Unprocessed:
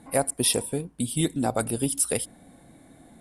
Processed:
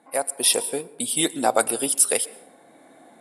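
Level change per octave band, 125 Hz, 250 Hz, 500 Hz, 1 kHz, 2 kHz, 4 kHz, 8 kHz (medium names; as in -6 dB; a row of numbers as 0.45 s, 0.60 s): -13.0 dB, -2.5 dB, +3.0 dB, +6.5 dB, +6.0 dB, +5.5 dB, +5.5 dB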